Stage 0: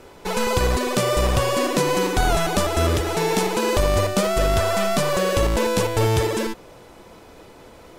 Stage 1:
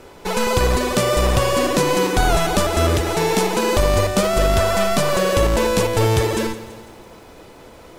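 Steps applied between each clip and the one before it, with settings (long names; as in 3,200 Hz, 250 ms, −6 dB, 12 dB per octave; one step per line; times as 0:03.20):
feedback echo at a low word length 166 ms, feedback 55%, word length 8 bits, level −14.5 dB
level +2.5 dB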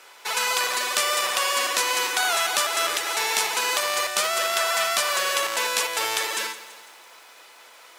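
high-pass filter 1,300 Hz 12 dB per octave
level +2 dB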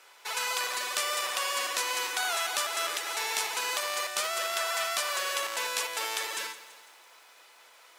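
low-shelf EQ 190 Hz −10 dB
level −7 dB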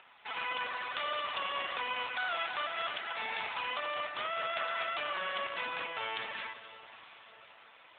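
upward compression, threshold −51 dBFS
feedback delay with all-pass diffusion 571 ms, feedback 56%, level −15.5 dB
level −1.5 dB
AMR narrowband 7.95 kbit/s 8,000 Hz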